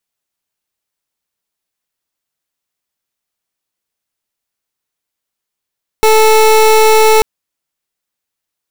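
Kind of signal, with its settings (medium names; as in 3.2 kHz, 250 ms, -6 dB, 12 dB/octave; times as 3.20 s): pulse 437 Hz, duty 27% -7 dBFS 1.19 s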